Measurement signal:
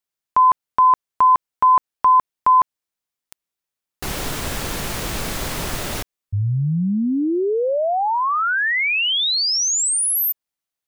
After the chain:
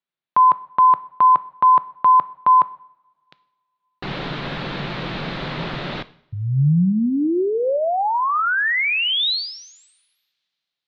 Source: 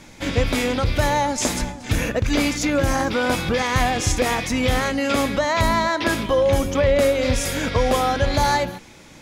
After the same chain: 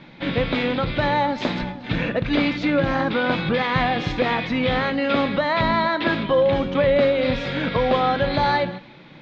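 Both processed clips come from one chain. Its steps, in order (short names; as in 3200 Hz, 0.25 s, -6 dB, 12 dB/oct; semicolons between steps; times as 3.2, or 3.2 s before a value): Chebyshev low-pass 4000 Hz, order 4; resonant low shelf 110 Hz -7.5 dB, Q 3; two-slope reverb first 0.61 s, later 2.6 s, from -26 dB, DRR 15 dB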